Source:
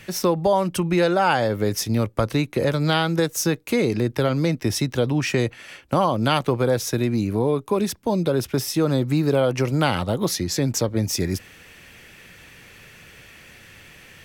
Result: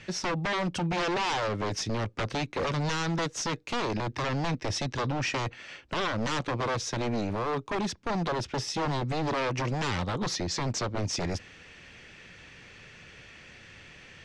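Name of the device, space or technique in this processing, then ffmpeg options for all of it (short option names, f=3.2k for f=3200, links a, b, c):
synthesiser wavefolder: -af "aeval=exprs='0.1*(abs(mod(val(0)/0.1+3,4)-2)-1)':c=same,lowpass=f=6.6k:w=0.5412,lowpass=f=6.6k:w=1.3066,volume=-3.5dB"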